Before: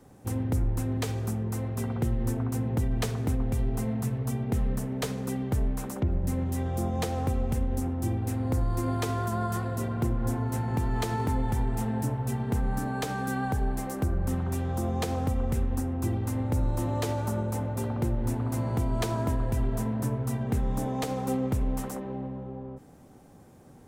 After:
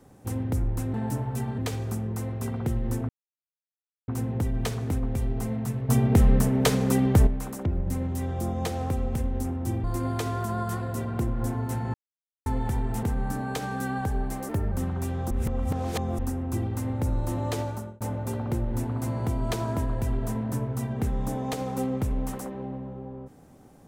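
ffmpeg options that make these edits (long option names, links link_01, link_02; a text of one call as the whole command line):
ffmpeg -i in.wav -filter_complex "[0:a]asplit=15[link_01][link_02][link_03][link_04][link_05][link_06][link_07][link_08][link_09][link_10][link_11][link_12][link_13][link_14][link_15];[link_01]atrim=end=0.942[link_16];[link_02]atrim=start=11.858:end=12.502[link_17];[link_03]atrim=start=0.938:end=2.45,asetpts=PTS-STARTPTS,afade=type=out:start_time=1.508:duration=0.004:curve=hsin,apad=pad_dur=0.99[link_18];[link_04]atrim=start=2.45:end=4.262,asetpts=PTS-STARTPTS,afade=type=in:duration=0.004:curve=hsin[link_19];[link_05]atrim=start=4.258:end=5.642,asetpts=PTS-STARTPTS,volume=9dB[link_20];[link_06]atrim=start=5.638:end=8.212[link_21];[link_07]atrim=start=8.668:end=10.77,asetpts=PTS-STARTPTS,afade=type=out:start_time=2.098:duration=0.004:curve=hsin[link_22];[link_08]atrim=start=10.77:end=11.29,asetpts=PTS-STARTPTS,volume=0[link_23];[link_09]atrim=start=11.29:end=11.862,asetpts=PTS-STARTPTS,afade=type=in:duration=0.004:curve=hsin[link_24];[link_10]atrim=start=12.498:end=13.964[link_25];[link_11]atrim=start=13.96:end=14.22,asetpts=PTS-STARTPTS,asetrate=50715,aresample=44100,atrim=end_sample=9970,asetpts=PTS-STARTPTS[link_26];[link_12]atrim=start=14.216:end=14.812[link_27];[link_13]atrim=start=14.808:end=15.692,asetpts=PTS-STARTPTS,areverse[link_28];[link_14]atrim=start=15.688:end=17.51,asetpts=PTS-STARTPTS,afade=type=out:start_time=1.432:duration=0.39[link_29];[link_15]atrim=start=17.51,asetpts=PTS-STARTPTS,afade=type=in:duration=0.004:curve=hsin[link_30];[link_16][link_17]acrossfade=duration=0.004:curve1=hsin:curve2=hsin[link_31];[link_18][link_19]concat=n=2:v=0:a=1[link_32];[link_31][link_32]acrossfade=duration=0.004:curve1=hsin:curve2=hsin[link_33];[link_33][link_20]acrossfade=duration=0.004:curve1=hsin:curve2=hsin[link_34];[link_34][link_21]acrossfade=duration=0.004:curve1=hsin:curve2=hsin[link_35];[link_22][link_23][link_24]concat=n=3:v=0:a=1[link_36];[link_35][link_36]acrossfade=duration=0.004:curve1=hsin:curve2=hsin[link_37];[link_37][link_25]acrossfade=duration=0.004:curve1=hsin:curve2=hsin[link_38];[link_38][link_26]acrossfade=duration=0.004:curve1=hsin:curve2=hsin[link_39];[link_39][link_27]acrossfade=duration=0.004:curve1=hsin:curve2=hsin[link_40];[link_40][link_28]acrossfade=duration=0.004:curve1=hsin:curve2=hsin[link_41];[link_29][link_30]concat=n=2:v=0:a=1[link_42];[link_41][link_42]acrossfade=duration=0.004:curve1=hsin:curve2=hsin" out.wav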